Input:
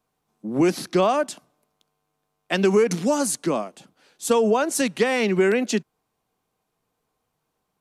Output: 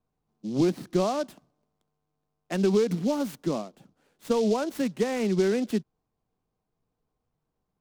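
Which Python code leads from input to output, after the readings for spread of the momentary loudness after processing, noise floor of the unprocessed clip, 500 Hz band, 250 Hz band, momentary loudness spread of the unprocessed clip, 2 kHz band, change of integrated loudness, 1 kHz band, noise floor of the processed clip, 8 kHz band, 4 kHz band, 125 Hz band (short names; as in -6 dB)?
9 LU, -77 dBFS, -5.5 dB, -3.0 dB, 11 LU, -12.0 dB, -5.0 dB, -8.5 dB, -82 dBFS, -13.5 dB, -8.0 dB, -1.5 dB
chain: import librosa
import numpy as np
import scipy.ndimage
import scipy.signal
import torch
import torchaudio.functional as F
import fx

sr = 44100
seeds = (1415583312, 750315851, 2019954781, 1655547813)

y = fx.tilt_eq(x, sr, slope=-3.0)
y = fx.noise_mod_delay(y, sr, seeds[0], noise_hz=4300.0, depth_ms=0.034)
y = F.gain(torch.from_numpy(y), -9.0).numpy()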